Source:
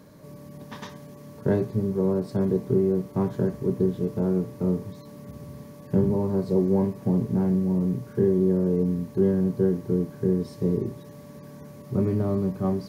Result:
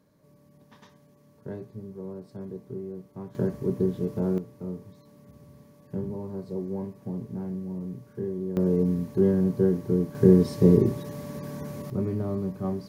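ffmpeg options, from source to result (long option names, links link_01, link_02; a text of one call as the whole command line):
ffmpeg -i in.wav -af "asetnsamples=nb_out_samples=441:pad=0,asendcmd='3.35 volume volume -2dB;4.38 volume volume -10.5dB;8.57 volume volume 0dB;10.15 volume volume 7dB;11.9 volume volume -4.5dB',volume=-14.5dB" out.wav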